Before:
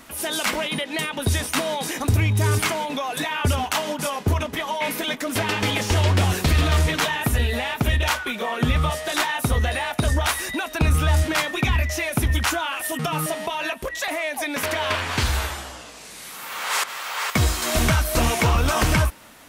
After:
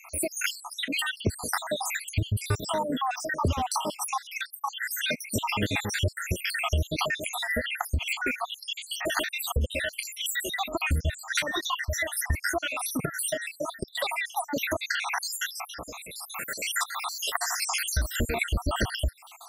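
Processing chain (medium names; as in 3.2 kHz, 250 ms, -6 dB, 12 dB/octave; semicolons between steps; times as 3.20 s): random holes in the spectrogram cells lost 78%; compression 3:1, threshold -33 dBFS, peak gain reduction 13 dB; trim +6.5 dB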